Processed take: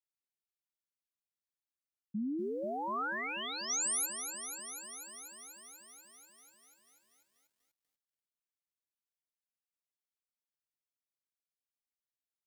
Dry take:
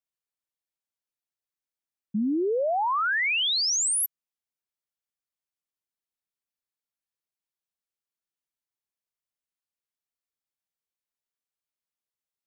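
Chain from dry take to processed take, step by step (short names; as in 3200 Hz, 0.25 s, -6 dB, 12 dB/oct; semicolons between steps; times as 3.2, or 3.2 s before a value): bell 750 Hz -7.5 dB 1.7 oct; 2.62–3.7 negative-ratio compressor -29 dBFS, ratio -0.5; lo-fi delay 0.244 s, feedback 80%, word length 10-bit, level -9 dB; gain -8.5 dB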